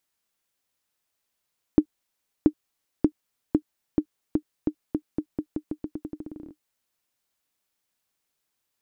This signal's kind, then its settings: bouncing ball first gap 0.68 s, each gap 0.86, 304 Hz, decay 74 ms -5 dBFS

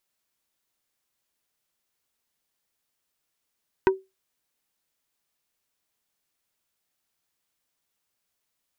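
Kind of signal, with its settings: wood hit plate, lowest mode 382 Hz, decay 0.22 s, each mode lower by 4 dB, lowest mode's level -12 dB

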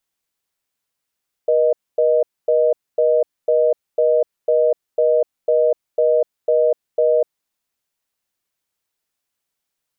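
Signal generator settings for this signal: call progress tone reorder tone, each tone -15 dBFS 5.84 s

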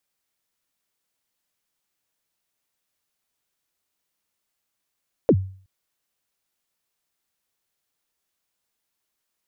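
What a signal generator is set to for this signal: kick drum length 0.37 s, from 570 Hz, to 95 Hz, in 61 ms, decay 0.46 s, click off, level -9 dB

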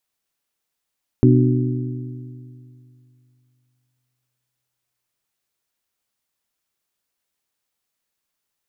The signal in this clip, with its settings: metal hit bell, length 6.48 s, lowest mode 125 Hz, modes 4, decay 2.73 s, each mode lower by 2 dB, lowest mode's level -11 dB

